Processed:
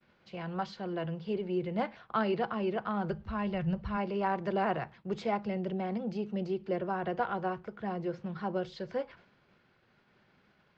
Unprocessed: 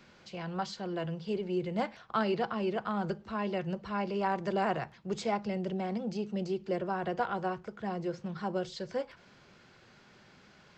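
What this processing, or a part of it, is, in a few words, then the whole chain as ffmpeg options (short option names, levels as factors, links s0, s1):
hearing-loss simulation: -filter_complex "[0:a]asplit=3[s0][s1][s2];[s0]afade=t=out:st=3.12:d=0.02[s3];[s1]asubboost=boost=12:cutoff=100,afade=t=in:st=3.12:d=0.02,afade=t=out:st=3.96:d=0.02[s4];[s2]afade=t=in:st=3.96:d=0.02[s5];[s3][s4][s5]amix=inputs=3:normalize=0,lowpass=3400,agate=range=0.0224:threshold=0.00251:ratio=3:detection=peak"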